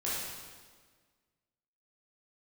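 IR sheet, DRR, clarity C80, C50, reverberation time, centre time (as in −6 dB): −8.5 dB, 1.0 dB, −2.0 dB, 1.6 s, 104 ms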